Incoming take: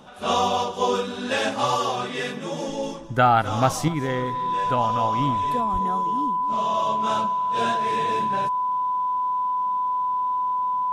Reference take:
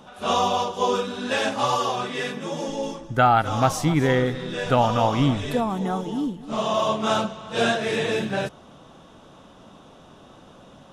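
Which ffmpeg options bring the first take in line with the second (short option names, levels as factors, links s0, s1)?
-filter_complex "[0:a]bandreject=f=1000:w=30,asplit=3[s0][s1][s2];[s0]afade=t=out:st=5.72:d=0.02[s3];[s1]highpass=f=140:w=0.5412,highpass=f=140:w=1.3066,afade=t=in:st=5.72:d=0.02,afade=t=out:st=5.84:d=0.02[s4];[s2]afade=t=in:st=5.84:d=0.02[s5];[s3][s4][s5]amix=inputs=3:normalize=0,asetnsamples=n=441:p=0,asendcmd='3.88 volume volume 6dB',volume=1"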